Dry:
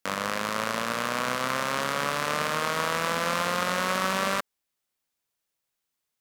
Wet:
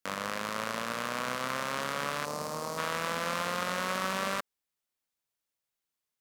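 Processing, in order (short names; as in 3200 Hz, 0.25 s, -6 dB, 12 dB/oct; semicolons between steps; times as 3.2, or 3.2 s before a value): 2.25–2.78 band shelf 2200 Hz -12.5 dB; gain -5.5 dB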